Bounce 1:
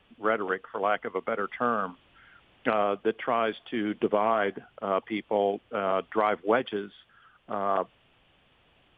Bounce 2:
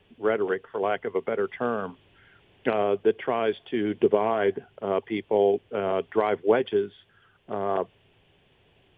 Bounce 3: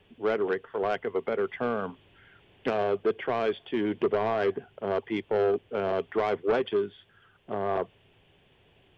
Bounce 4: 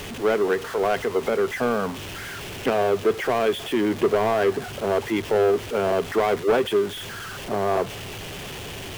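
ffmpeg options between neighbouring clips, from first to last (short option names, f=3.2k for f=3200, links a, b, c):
-af "equalizer=f=100:t=o:w=0.33:g=10,equalizer=f=160:t=o:w=0.33:g=5,equalizer=f=400:t=o:w=0.33:g=10,equalizer=f=1.25k:t=o:w=0.33:g=-8"
-af "asoftclip=type=tanh:threshold=-19dB"
-af "aeval=exprs='val(0)+0.5*0.02*sgn(val(0))':c=same,volume=4.5dB"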